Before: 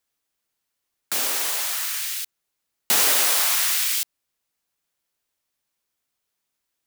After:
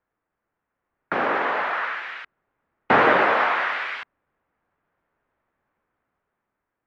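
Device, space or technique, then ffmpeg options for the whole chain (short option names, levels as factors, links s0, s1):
action camera in a waterproof case: -filter_complex "[0:a]asplit=3[s0][s1][s2];[s0]afade=t=out:st=1.93:d=0.02[s3];[s1]adynamicequalizer=threshold=0.0126:dfrequency=1200:dqfactor=0.82:tfrequency=1200:tqfactor=0.82:attack=5:release=100:ratio=0.375:range=2:mode=cutabove:tftype=bell,afade=t=in:st=1.93:d=0.02,afade=t=out:st=4:d=0.02[s4];[s2]afade=t=in:st=4:d=0.02[s5];[s3][s4][s5]amix=inputs=3:normalize=0,lowpass=f=1700:w=0.5412,lowpass=f=1700:w=1.3066,dynaudnorm=f=320:g=7:m=2,volume=2.51" -ar 32000 -c:a aac -b:a 48k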